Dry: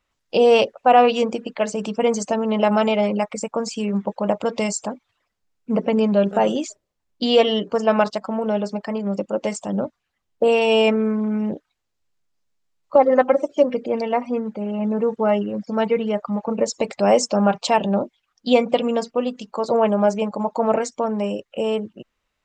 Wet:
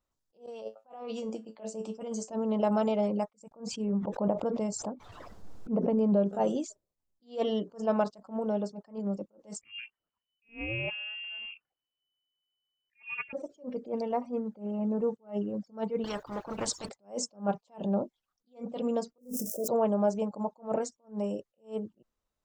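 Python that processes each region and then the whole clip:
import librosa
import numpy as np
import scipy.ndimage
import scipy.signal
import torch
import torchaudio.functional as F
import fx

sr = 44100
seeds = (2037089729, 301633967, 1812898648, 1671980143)

y = fx.chain(x, sr, fx.low_shelf(hz=130.0, db=-12.0),
    fx.comb_fb(f0_hz=110.0, decay_s=0.18, harmonics='all', damping=0.0, mix_pct=80),
    fx.over_compress(threshold_db=-29.0, ratio=-1.0), at=(0.46, 2.3))
y = fx.chain(y, sr, fx.lowpass(hz=1500.0, slope=6),
    fx.pre_swell(db_per_s=32.0), at=(3.51, 6.26))
y = fx.chain(y, sr, fx.air_absorb(metres=160.0),
    fx.freq_invert(carrier_hz=3000), at=(9.61, 13.33))
y = fx.chain(y, sr, fx.peak_eq(hz=7500.0, db=-10.5, octaves=0.98),
    fx.spectral_comp(ratio=4.0), at=(16.04, 16.89))
y = fx.chain(y, sr, fx.crossing_spikes(level_db=-28.0),
    fx.cheby1_bandstop(low_hz=630.0, high_hz=5400.0, order=5),
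    fx.sustainer(db_per_s=32.0), at=(19.18, 19.68))
y = fx.peak_eq(y, sr, hz=2300.0, db=-13.0, octaves=1.5)
y = fx.attack_slew(y, sr, db_per_s=230.0)
y = y * 10.0 ** (-7.5 / 20.0)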